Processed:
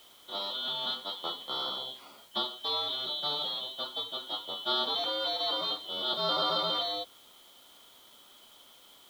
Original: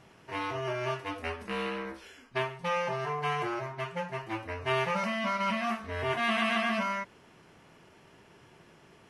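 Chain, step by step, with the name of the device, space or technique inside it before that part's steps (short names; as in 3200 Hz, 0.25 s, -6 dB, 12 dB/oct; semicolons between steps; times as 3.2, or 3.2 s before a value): split-band scrambled radio (four-band scrambler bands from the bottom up 2413; BPF 340–3100 Hz; white noise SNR 26 dB); gain +2.5 dB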